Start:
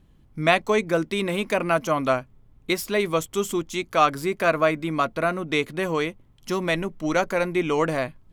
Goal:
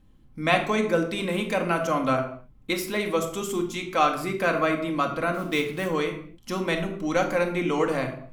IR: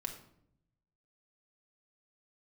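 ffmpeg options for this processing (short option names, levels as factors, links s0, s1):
-filter_complex "[0:a]asettb=1/sr,asplit=3[s0][s1][s2];[s0]atrim=end=5.344[s3];[s1]atrim=start=5.34:end=5.88,asetpts=PTS-STARTPTS,afade=t=in:d=0.004:c=qsin,afade=t=out:st=0.536:d=0.004:c=qsin,acrusher=bits=5:mode=log:mix=0:aa=0.000001[s4];[s2]atrim=start=5.876[s5];[s3][s4]acrossfade=d=0.004:c1=hsin:c2=qsin[s6];[s6][s5]acrossfade=d=0.004:c1=qsin:c2=hsin[s7];[1:a]atrim=start_sample=2205,afade=t=out:st=0.34:d=0.01,atrim=end_sample=15435[s8];[s7][s8]afir=irnorm=-1:irlink=0,volume=0.891"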